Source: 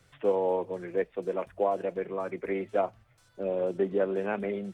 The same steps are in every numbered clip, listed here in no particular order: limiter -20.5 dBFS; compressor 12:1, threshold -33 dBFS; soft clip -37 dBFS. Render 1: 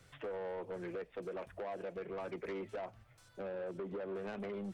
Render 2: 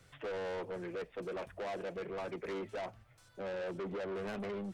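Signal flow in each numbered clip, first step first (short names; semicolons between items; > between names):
limiter > compressor > soft clip; limiter > soft clip > compressor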